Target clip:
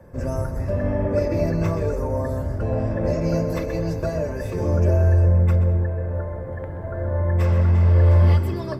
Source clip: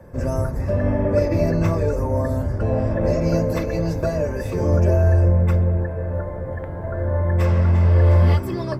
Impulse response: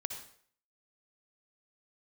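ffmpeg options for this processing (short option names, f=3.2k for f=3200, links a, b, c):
-filter_complex "[0:a]asplit=2[a][b];[1:a]atrim=start_sample=2205,adelay=128[c];[b][c]afir=irnorm=-1:irlink=0,volume=-11dB[d];[a][d]amix=inputs=2:normalize=0,volume=-3dB"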